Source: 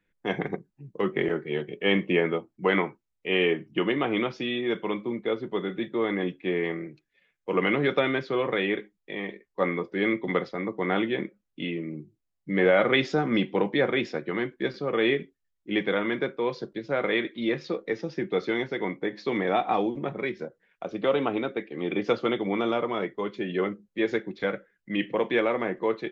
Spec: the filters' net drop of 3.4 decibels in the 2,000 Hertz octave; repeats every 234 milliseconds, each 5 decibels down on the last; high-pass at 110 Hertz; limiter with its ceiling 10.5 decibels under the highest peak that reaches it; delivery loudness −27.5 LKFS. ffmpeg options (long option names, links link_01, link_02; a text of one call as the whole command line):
ffmpeg -i in.wav -af "highpass=110,equalizer=frequency=2000:width_type=o:gain=-4,alimiter=limit=-20dB:level=0:latency=1,aecho=1:1:234|468|702|936|1170|1404|1638:0.562|0.315|0.176|0.0988|0.0553|0.031|0.0173,volume=2.5dB" out.wav